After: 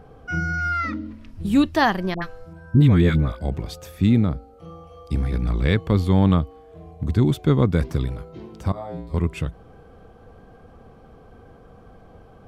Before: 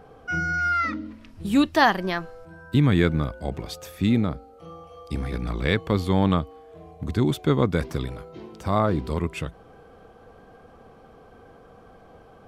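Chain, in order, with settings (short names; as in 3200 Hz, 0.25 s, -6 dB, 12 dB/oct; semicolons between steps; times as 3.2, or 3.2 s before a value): low shelf 210 Hz +10 dB; 2.14–3.41 dispersion highs, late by 81 ms, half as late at 820 Hz; 8.72–9.14 resonator 58 Hz, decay 0.52 s, harmonics odd, mix 100%; gain -1.5 dB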